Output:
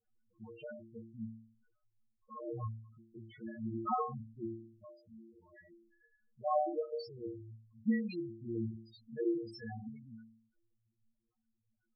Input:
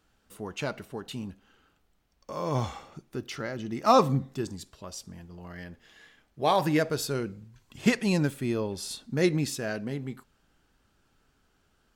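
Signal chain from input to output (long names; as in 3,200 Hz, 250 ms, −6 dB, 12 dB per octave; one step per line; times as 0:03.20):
low-pass that shuts in the quiet parts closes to 1,400 Hz, open at −22 dBFS
stiff-string resonator 110 Hz, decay 0.68 s, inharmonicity 0.008
spectral peaks only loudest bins 4
level +5 dB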